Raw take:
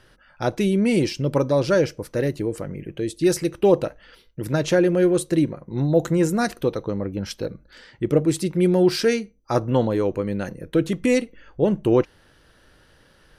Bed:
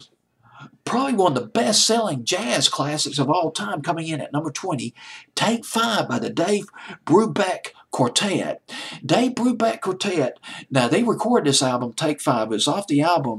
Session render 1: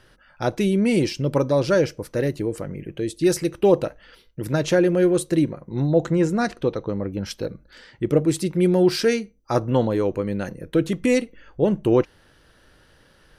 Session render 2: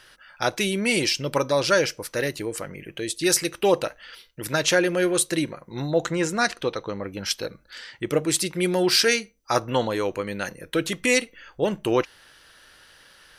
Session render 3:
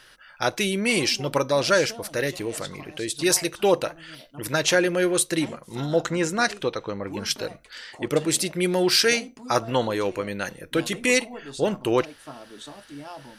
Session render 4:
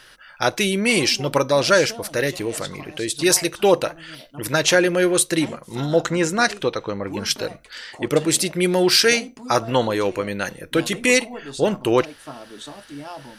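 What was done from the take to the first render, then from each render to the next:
5.90–7.04 s: distance through air 72 m
tilt shelf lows -9 dB, about 710 Hz
add bed -21.5 dB
trim +4 dB; peak limiter -3 dBFS, peak gain reduction 2 dB

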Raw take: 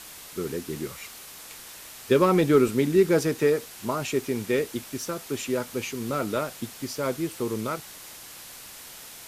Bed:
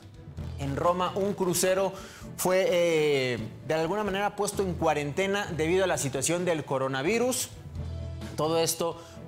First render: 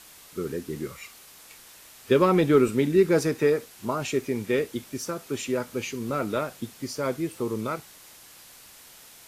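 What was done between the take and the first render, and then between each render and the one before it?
noise print and reduce 6 dB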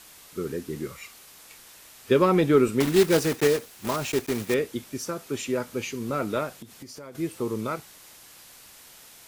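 2.80–4.56 s: block-companded coder 3-bit; 6.60–7.15 s: compression 12:1, threshold -38 dBFS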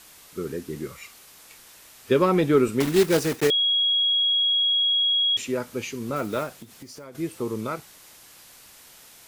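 3.50–5.37 s: bleep 3.31 kHz -18.5 dBFS; 6.16–7.05 s: block-companded coder 5-bit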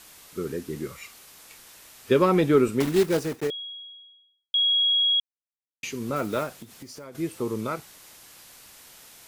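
2.37–4.54 s: studio fade out; 5.20–5.83 s: mute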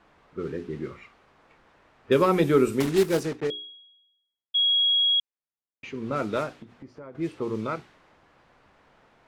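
hum notches 60/120/180/240/300/360/420 Hz; level-controlled noise filter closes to 1.2 kHz, open at -19 dBFS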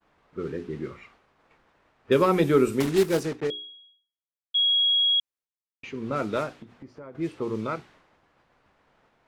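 expander -54 dBFS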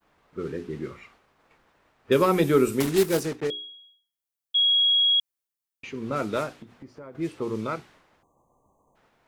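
8.22–8.96 s: spectral selection erased 1.2–6 kHz; treble shelf 7.7 kHz +9.5 dB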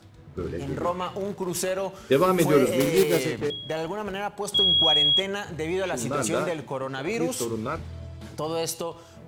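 add bed -2.5 dB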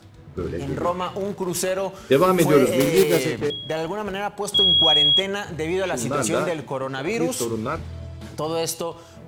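trim +3.5 dB

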